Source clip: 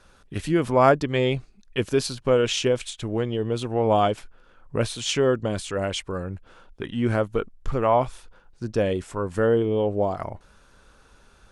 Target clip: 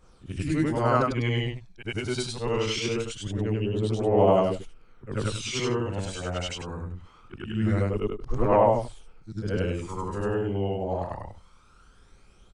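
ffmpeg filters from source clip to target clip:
ffmpeg -i in.wav -af "afftfilt=real='re':imag='-im':win_size=8192:overlap=0.75,asetrate=40517,aresample=44100,aphaser=in_gain=1:out_gain=1:delay=1.4:decay=0.49:speed=0.23:type=triangular" out.wav

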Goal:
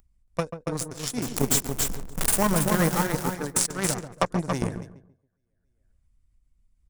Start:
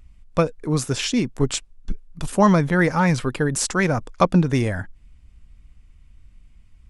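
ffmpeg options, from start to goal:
ffmpeg -i in.wav -filter_complex "[0:a]asettb=1/sr,asplit=3[link_01][link_02][link_03];[link_01]atrim=end=1.224[link_04];[link_02]atrim=start=1.22:end=3.07,asetpts=PTS-STARTPTS,afade=type=in:duration=0.004:curve=qsin,afade=type=out:start_time=1.846:duration=0.004:curve=qsin,aeval=exprs='val(0)+0.5*0.126*sgn(val(0))':channel_layout=same[link_05];[link_03]atrim=start=3.066[link_06];[link_04][link_05]acrossfade=duration=0.004:curve1=hsin:curve2=qsin[link_07];[link_07][link_06]acrossfade=duration=0.004:curve1=qsin:curve2=hsin,equalizer=frequency=4300:width=0.79:gain=-6,aecho=1:1:278|556|834|1112:0.631|0.202|0.0646|0.0207,acrossover=split=1200[link_08][link_09];[link_09]aexciter=amount=5.6:drive=2.5:freq=3800[link_10];[link_08][link_10]amix=inputs=2:normalize=0,aeval=exprs='1.5*(cos(1*acos(clip(val(0)/1.5,-1,1)))-cos(1*PI/2))+0.15*(cos(3*acos(clip(val(0)/1.5,-1,1)))-cos(3*PI/2))+0.0119*(cos(6*acos(clip(val(0)/1.5,-1,1)))-cos(6*PI/2))+0.133*(cos(7*acos(clip(val(0)/1.5,-1,1)))-cos(7*PI/2))':channel_layout=same,highshelf=frequency=3000:gain=-7,agate=range=-43dB:threshold=-36dB:ratio=16:detection=peak,acompressor=threshold=-24dB:ratio=3,asplit=2[link_11][link_12];[link_12]adelay=138,lowpass=frequency=990:poles=1,volume=-8.5dB,asplit=2[link_13][link_14];[link_14]adelay=138,lowpass=frequency=990:poles=1,volume=0.17,asplit=2[link_15][link_16];[link_16]adelay=138,lowpass=frequency=990:poles=1,volume=0.17[link_17];[link_13][link_15][link_17]amix=inputs=3:normalize=0[link_18];[link_11][link_18]amix=inputs=2:normalize=0,acompressor=mode=upward:threshold=-35dB:ratio=2.5,volume=4.5dB" out.wav

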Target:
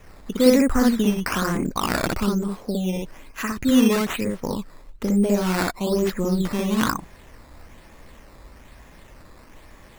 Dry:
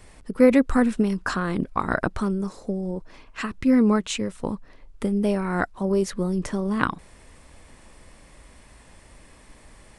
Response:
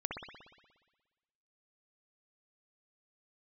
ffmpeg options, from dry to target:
-filter_complex "[0:a]asplit=2[link_01][link_02];[link_02]alimiter=limit=-15.5dB:level=0:latency=1,volume=1dB[link_03];[link_01][link_03]amix=inputs=2:normalize=0[link_04];[1:a]atrim=start_sample=2205,atrim=end_sample=3087[link_05];[link_04][link_05]afir=irnorm=-1:irlink=0,acrusher=samples=10:mix=1:aa=0.000001:lfo=1:lforange=10:lforate=1.1,volume=-4dB"

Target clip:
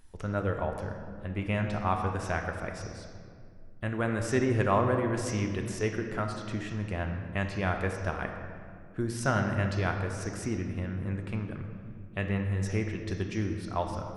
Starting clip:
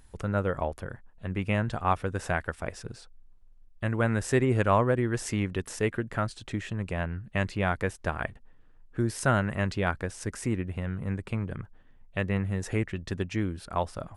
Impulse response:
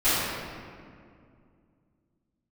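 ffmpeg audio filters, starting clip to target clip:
-filter_complex "[0:a]asplit=2[link_01][link_02];[link_02]lowpass=frequency=5900:width_type=q:width=7.4[link_03];[1:a]atrim=start_sample=2205,highshelf=frequency=6300:gain=-10[link_04];[link_03][link_04]afir=irnorm=-1:irlink=0,volume=-20.5dB[link_05];[link_01][link_05]amix=inputs=2:normalize=0,volume=-4dB"

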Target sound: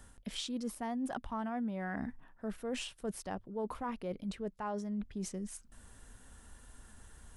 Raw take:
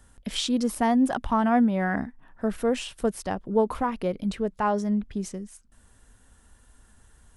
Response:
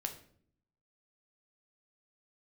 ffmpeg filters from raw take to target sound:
-af "bandreject=frequency=50:width_type=h:width=6,bandreject=frequency=100:width_type=h:width=6,areverse,acompressor=threshold=-40dB:ratio=4,areverse,volume=1.5dB"

